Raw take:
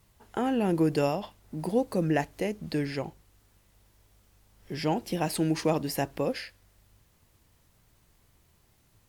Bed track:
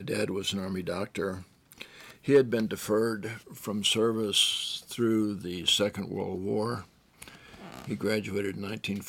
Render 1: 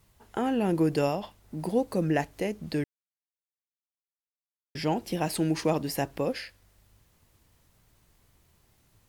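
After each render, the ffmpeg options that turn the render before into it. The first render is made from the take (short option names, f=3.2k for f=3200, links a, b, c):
-filter_complex "[0:a]asplit=3[a][b][c];[a]atrim=end=2.84,asetpts=PTS-STARTPTS,afade=t=out:st=2.836:d=0.004:c=hsin[d];[b]atrim=start=2.84:end=4.75,asetpts=PTS-STARTPTS,volume=0[e];[c]atrim=start=4.75,asetpts=PTS-STARTPTS,afade=t=in:d=0.004:c=hsin[f];[d][e][f]concat=n=3:v=0:a=1"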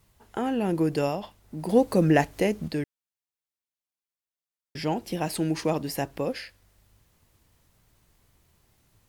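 -filter_complex "[0:a]asettb=1/sr,asplit=3[a][b][c];[a]atrim=end=1.694[d];[b]atrim=start=1.69:end=2.68,asetpts=PTS-STARTPTS,afade=t=in:d=0.004:c=qsin,afade=t=out:st=0.986:d=0.004:c=qsin,acontrast=59[e];[c]atrim=start=2.676[f];[d][e]acrossfade=d=0.004:c1=hsin:c2=qsin[g];[g][f]acrossfade=d=0.004:c1=qsin:c2=hsin"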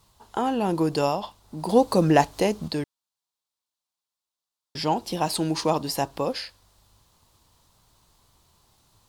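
-af "equalizer=f=1k:t=o:w=1:g=10,equalizer=f=2k:t=o:w=1:g=-6,equalizer=f=4k:t=o:w=1:g=9,equalizer=f=8k:t=o:w=1:g=4"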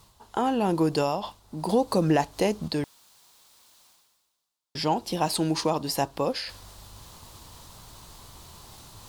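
-af "areverse,acompressor=mode=upward:threshold=-33dB:ratio=2.5,areverse,alimiter=limit=-13dB:level=0:latency=1:release=222"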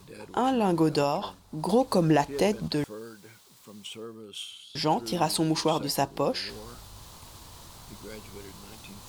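-filter_complex "[1:a]volume=-15dB[a];[0:a][a]amix=inputs=2:normalize=0"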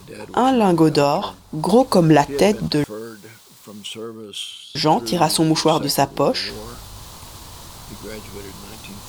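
-af "volume=9dB"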